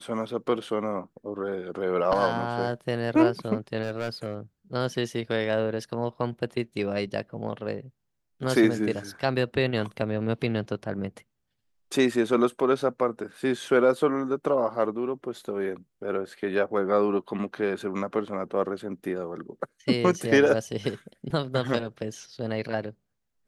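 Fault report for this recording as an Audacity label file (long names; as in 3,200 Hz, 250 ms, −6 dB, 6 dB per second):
3.820000	4.350000	clipping −24.5 dBFS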